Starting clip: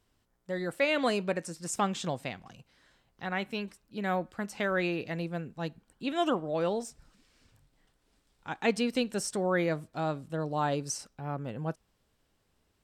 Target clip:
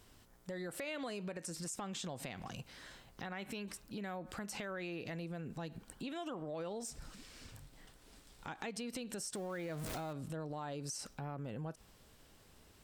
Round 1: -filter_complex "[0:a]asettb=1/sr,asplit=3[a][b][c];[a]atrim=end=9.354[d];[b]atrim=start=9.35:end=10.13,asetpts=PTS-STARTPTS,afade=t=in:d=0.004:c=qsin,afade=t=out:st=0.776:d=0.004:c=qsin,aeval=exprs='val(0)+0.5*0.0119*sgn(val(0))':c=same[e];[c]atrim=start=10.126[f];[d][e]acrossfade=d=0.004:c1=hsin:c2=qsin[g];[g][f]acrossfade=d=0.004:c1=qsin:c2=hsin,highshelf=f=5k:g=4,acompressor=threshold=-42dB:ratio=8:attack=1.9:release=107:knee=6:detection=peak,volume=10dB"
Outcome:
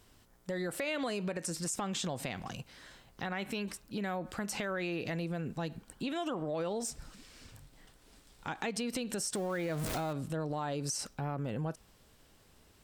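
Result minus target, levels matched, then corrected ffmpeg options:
compressor: peak gain reduction -7 dB
-filter_complex "[0:a]asettb=1/sr,asplit=3[a][b][c];[a]atrim=end=9.354[d];[b]atrim=start=9.35:end=10.13,asetpts=PTS-STARTPTS,afade=t=in:d=0.004:c=qsin,afade=t=out:st=0.776:d=0.004:c=qsin,aeval=exprs='val(0)+0.5*0.0119*sgn(val(0))':c=same[e];[c]atrim=start=10.126[f];[d][e]acrossfade=d=0.004:c1=hsin:c2=qsin[g];[g][f]acrossfade=d=0.004:c1=qsin:c2=hsin,highshelf=f=5k:g=4,acompressor=threshold=-50dB:ratio=8:attack=1.9:release=107:knee=6:detection=peak,volume=10dB"

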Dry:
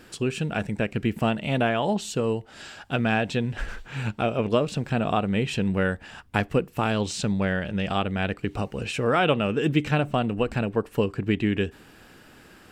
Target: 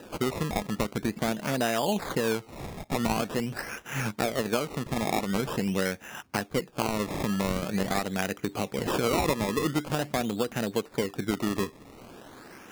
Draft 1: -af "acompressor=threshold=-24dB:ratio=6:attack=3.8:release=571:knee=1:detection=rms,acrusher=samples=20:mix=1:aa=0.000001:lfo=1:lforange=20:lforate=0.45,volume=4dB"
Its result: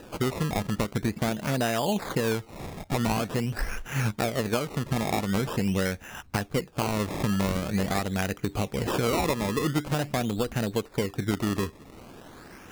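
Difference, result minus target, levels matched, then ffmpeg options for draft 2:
125 Hz band +4.0 dB
-af "acompressor=threshold=-24dB:ratio=6:attack=3.8:release=571:knee=1:detection=rms,highpass=170,acrusher=samples=20:mix=1:aa=0.000001:lfo=1:lforange=20:lforate=0.45,volume=4dB"

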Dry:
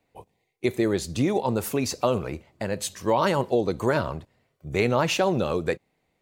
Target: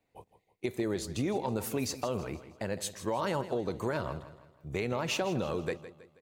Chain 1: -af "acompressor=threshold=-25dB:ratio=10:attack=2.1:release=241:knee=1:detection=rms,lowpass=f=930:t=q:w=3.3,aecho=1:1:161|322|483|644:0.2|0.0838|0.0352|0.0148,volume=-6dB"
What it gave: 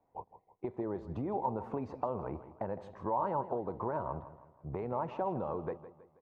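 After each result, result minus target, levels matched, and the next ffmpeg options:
compressor: peak gain reduction +6.5 dB; 1000 Hz band +5.5 dB
-af "acompressor=threshold=-18dB:ratio=10:attack=2.1:release=241:knee=1:detection=rms,lowpass=f=930:t=q:w=3.3,aecho=1:1:161|322|483|644:0.2|0.0838|0.0352|0.0148,volume=-6dB"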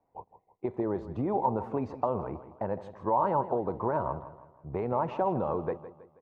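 1000 Hz band +6.0 dB
-af "acompressor=threshold=-18dB:ratio=10:attack=2.1:release=241:knee=1:detection=rms,aecho=1:1:161|322|483|644:0.2|0.0838|0.0352|0.0148,volume=-6dB"

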